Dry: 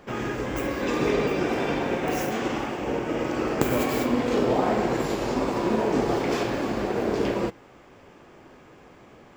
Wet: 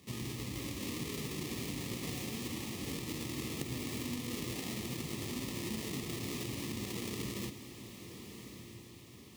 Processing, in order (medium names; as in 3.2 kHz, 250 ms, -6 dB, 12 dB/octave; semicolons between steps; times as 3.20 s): square wave that keeps the level; high-pass 71 Hz 24 dB/octave; amplifier tone stack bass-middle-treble 6-0-2; compression, threshold -42 dBFS, peak gain reduction 10 dB; Butterworth band-stop 1.5 kHz, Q 2.9; on a send: echo that smears into a reverb 1177 ms, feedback 43%, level -10 dB; on the sum: trim +6 dB